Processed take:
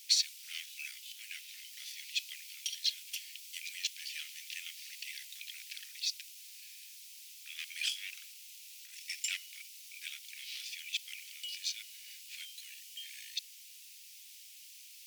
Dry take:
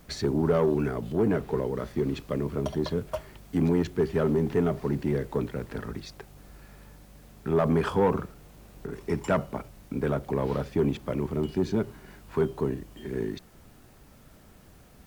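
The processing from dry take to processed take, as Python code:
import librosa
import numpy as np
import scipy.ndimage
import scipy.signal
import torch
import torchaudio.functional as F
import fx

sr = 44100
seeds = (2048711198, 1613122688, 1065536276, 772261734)

y = scipy.signal.sosfilt(scipy.signal.butter(8, 2400.0, 'highpass', fs=sr, output='sos'), x)
y = fx.peak_eq(y, sr, hz=5500.0, db=3.5, octaves=0.67)
y = y * 10.0 ** (9.0 / 20.0)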